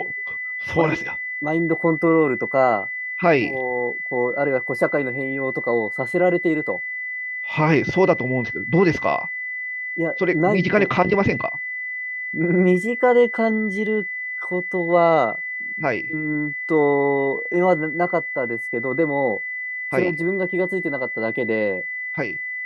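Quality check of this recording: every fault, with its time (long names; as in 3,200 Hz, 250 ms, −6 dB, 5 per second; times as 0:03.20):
whistle 2,000 Hz −26 dBFS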